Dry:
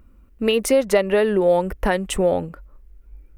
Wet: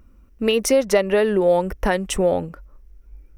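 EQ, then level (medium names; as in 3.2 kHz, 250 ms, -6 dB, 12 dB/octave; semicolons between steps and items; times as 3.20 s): peaking EQ 5.7 kHz +9 dB 0.24 oct; 0.0 dB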